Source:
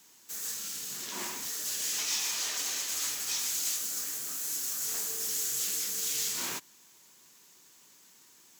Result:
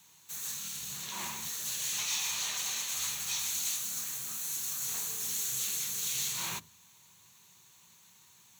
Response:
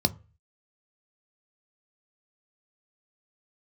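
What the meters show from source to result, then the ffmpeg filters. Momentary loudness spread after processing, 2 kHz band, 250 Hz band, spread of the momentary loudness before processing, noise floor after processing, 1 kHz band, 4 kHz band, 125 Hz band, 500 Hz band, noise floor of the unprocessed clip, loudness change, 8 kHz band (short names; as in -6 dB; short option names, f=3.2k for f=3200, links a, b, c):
6 LU, -0.5 dB, -2.5 dB, 6 LU, -61 dBFS, 0.0 dB, -1.5 dB, n/a, -6.5 dB, -59 dBFS, -1.5 dB, -1.5 dB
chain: -filter_complex "[0:a]asplit=2[a][b];[1:a]atrim=start_sample=2205,lowshelf=f=130:g=10[c];[b][c]afir=irnorm=-1:irlink=0,volume=-17dB[d];[a][d]amix=inputs=2:normalize=0,volume=-1dB"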